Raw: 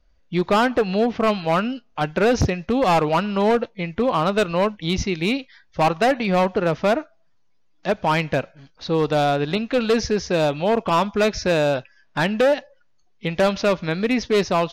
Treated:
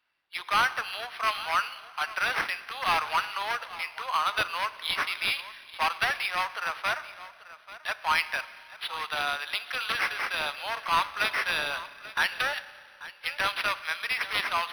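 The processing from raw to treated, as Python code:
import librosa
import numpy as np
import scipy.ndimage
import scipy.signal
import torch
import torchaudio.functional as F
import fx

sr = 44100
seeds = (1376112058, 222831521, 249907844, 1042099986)

y = scipy.signal.sosfilt(scipy.signal.butter(4, 1100.0, 'highpass', fs=sr, output='sos'), x)
y = fx.high_shelf(y, sr, hz=4100.0, db=8.5)
y = y + 10.0 ** (-16.5 / 20.0) * np.pad(y, (int(837 * sr / 1000.0), 0))[:len(y)]
y = fx.rev_schroeder(y, sr, rt60_s=2.2, comb_ms=30, drr_db=15.0)
y = np.interp(np.arange(len(y)), np.arange(len(y))[::6], y[::6])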